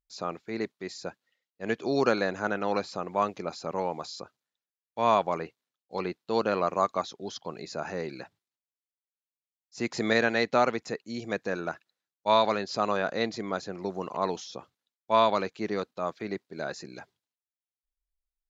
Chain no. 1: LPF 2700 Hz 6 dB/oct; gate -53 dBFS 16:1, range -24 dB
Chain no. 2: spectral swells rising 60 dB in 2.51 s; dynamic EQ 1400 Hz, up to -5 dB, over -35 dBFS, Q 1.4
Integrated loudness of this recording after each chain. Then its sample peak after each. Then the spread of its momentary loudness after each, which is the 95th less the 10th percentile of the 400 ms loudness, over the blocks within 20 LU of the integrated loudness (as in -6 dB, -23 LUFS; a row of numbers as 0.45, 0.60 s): -30.0, -27.0 LUFS; -10.5, -8.5 dBFS; 16, 11 LU